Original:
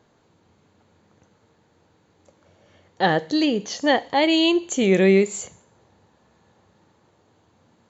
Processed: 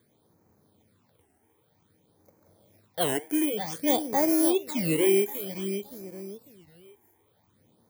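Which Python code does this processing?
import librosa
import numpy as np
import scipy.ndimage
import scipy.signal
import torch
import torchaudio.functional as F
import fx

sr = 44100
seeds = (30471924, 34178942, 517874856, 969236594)

p1 = fx.bit_reversed(x, sr, seeds[0], block=16)
p2 = scipy.signal.sosfilt(scipy.signal.butter(2, 71.0, 'highpass', fs=sr, output='sos'), p1)
p3 = p2 + fx.echo_feedback(p2, sr, ms=568, feedback_pct=31, wet_db=-10.0, dry=0)
p4 = fx.phaser_stages(p3, sr, stages=8, low_hz=160.0, high_hz=3500.0, hz=0.53, feedback_pct=0)
p5 = fx.record_warp(p4, sr, rpm=33.33, depth_cents=250.0)
y = p5 * librosa.db_to_amplitude(-4.0)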